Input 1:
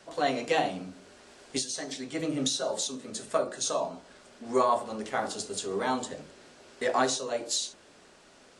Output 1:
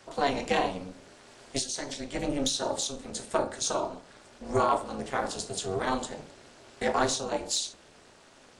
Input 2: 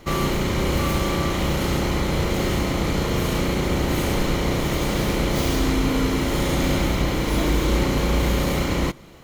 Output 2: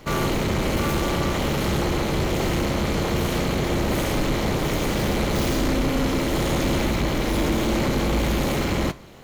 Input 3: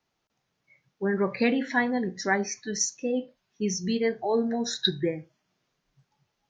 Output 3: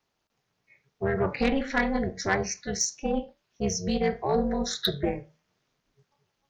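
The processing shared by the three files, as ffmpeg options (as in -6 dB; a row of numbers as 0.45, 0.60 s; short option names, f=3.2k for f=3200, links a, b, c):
-af "tremolo=f=280:d=0.947,flanger=delay=7.2:depth=2.5:regen=-81:speed=0.85:shape=triangular,aeval=exprs='0.2*(cos(1*acos(clip(val(0)/0.2,-1,1)))-cos(1*PI/2))+0.0282*(cos(5*acos(clip(val(0)/0.2,-1,1)))-cos(5*PI/2))':c=same,volume=4.5dB"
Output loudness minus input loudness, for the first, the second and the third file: 0.0, -1.0, -0.5 LU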